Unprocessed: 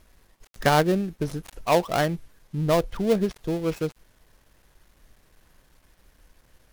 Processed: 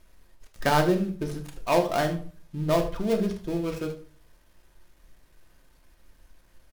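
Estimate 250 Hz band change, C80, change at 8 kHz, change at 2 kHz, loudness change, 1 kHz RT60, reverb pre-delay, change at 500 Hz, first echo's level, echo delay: −1.0 dB, 15.5 dB, −2.5 dB, −2.0 dB, −2.0 dB, 0.40 s, 3 ms, −2.0 dB, −13.5 dB, 76 ms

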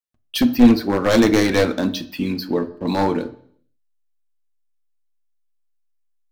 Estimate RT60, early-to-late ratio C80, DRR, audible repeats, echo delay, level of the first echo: 0.60 s, 18.5 dB, 9.0 dB, no echo audible, no echo audible, no echo audible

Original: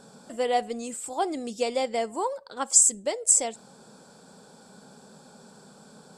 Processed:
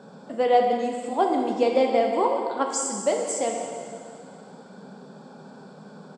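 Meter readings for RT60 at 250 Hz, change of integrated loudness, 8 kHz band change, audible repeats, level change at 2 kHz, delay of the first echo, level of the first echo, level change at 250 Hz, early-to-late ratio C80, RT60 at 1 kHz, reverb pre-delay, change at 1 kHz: 2.3 s, +0.5 dB, −10.0 dB, 1, +3.0 dB, 182 ms, −13.5 dB, +7.5 dB, 4.5 dB, 2.3 s, 4 ms, +6.5 dB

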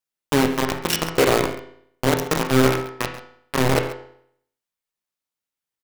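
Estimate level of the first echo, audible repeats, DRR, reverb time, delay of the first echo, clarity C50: −15.5 dB, 1, 4.0 dB, 0.65 s, 136 ms, 7.5 dB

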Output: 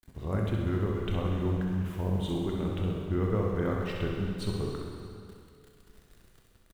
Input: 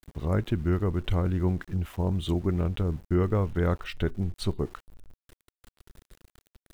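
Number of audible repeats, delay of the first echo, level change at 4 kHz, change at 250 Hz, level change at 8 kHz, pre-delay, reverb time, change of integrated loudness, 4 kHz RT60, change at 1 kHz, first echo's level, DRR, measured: 2, 65 ms, −2.0 dB, −2.0 dB, can't be measured, 8 ms, 2.3 s, −3.0 dB, 2.2 s, −2.0 dB, −6.0 dB, −2.0 dB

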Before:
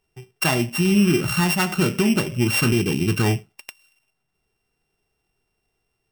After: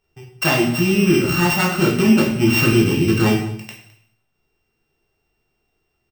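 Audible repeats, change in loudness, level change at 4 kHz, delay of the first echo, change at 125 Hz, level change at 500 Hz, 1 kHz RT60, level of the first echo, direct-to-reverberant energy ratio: 1, +3.5 dB, +3.0 dB, 211 ms, +2.5 dB, +5.0 dB, 0.70 s, −19.5 dB, −2.0 dB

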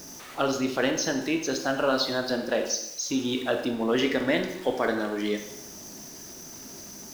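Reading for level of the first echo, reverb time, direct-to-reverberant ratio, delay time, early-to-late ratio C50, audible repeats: no echo audible, 0.85 s, 5.0 dB, no echo audible, 7.5 dB, no echo audible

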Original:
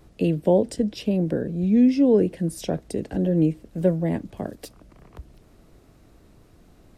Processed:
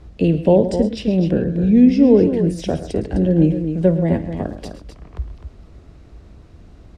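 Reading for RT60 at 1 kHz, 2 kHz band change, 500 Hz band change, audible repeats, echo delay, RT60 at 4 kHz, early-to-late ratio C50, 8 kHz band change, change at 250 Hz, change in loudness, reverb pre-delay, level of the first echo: no reverb audible, +5.0 dB, +5.5 dB, 3, 53 ms, no reverb audible, no reverb audible, can't be measured, +6.0 dB, +6.0 dB, no reverb audible, −17.0 dB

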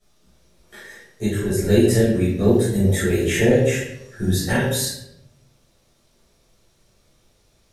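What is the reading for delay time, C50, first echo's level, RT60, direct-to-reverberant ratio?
no echo audible, 1.0 dB, no echo audible, 0.80 s, −12.0 dB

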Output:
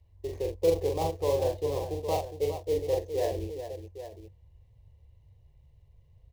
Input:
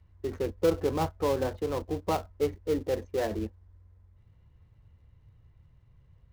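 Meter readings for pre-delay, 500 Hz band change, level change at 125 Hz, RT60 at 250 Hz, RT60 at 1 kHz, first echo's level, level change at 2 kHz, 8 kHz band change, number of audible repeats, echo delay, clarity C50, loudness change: no reverb audible, +1.5 dB, +0.5 dB, no reverb audible, no reverb audible, −3.5 dB, −5.5 dB, +2.0 dB, 3, 42 ms, no reverb audible, +0.5 dB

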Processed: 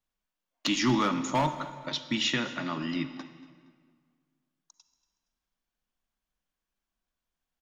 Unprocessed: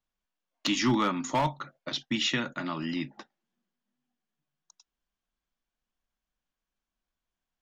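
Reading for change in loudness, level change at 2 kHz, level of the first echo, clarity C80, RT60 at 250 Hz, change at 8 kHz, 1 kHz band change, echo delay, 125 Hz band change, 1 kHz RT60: 0.0 dB, +0.5 dB, −19.5 dB, 11.5 dB, 2.0 s, +0.5 dB, +0.5 dB, 234 ms, +0.5 dB, 1.7 s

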